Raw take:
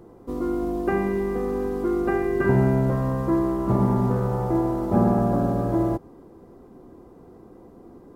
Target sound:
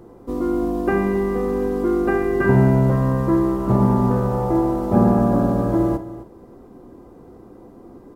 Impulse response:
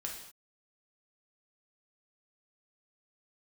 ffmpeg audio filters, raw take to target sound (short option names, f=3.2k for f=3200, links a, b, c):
-filter_complex "[0:a]aecho=1:1:261:0.168,asplit=2[a][b];[1:a]atrim=start_sample=2205,atrim=end_sample=3087[c];[b][c]afir=irnorm=-1:irlink=0,volume=-3dB[d];[a][d]amix=inputs=2:normalize=0"